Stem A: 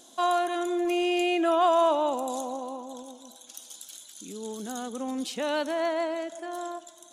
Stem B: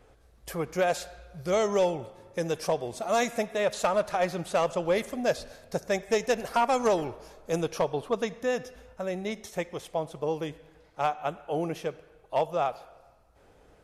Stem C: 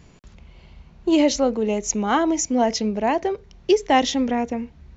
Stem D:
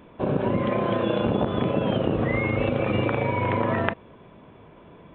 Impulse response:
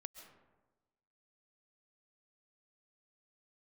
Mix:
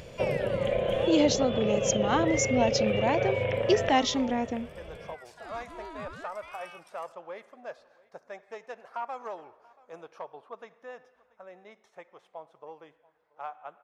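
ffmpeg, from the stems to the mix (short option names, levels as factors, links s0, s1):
-filter_complex "[0:a]aeval=exprs='val(0)*sin(2*PI*1100*n/s+1100*0.75/0.6*sin(2*PI*0.6*n/s))':c=same,volume=0.299,asplit=2[s0][s1];[s1]volume=0.211[s2];[1:a]bandpass=f=1100:t=q:w=1.2:csg=0,adelay=2400,volume=0.355,asplit=2[s3][s4];[s4]volume=0.0668[s5];[2:a]acompressor=mode=upward:threshold=0.0158:ratio=2.5,equalizer=f=4300:w=1.5:g=4,volume=0.473,asplit=2[s6][s7];[3:a]equalizer=f=3100:t=o:w=0.81:g=7.5,acompressor=threshold=0.0398:ratio=6,firequalizer=gain_entry='entry(140,0);entry(290,-12);entry(520,9);entry(980,-11);entry(1800,0)':delay=0.05:min_phase=1,volume=1.12,asplit=2[s8][s9];[s9]volume=0.168[s10];[s7]apad=whole_len=314195[s11];[s0][s11]sidechaincompress=threshold=0.00631:ratio=8:attack=16:release=1220[s12];[4:a]atrim=start_sample=2205[s13];[s2][s13]afir=irnorm=-1:irlink=0[s14];[s5][s10]amix=inputs=2:normalize=0,aecho=0:1:682:1[s15];[s12][s3][s6][s8][s14][s15]amix=inputs=6:normalize=0"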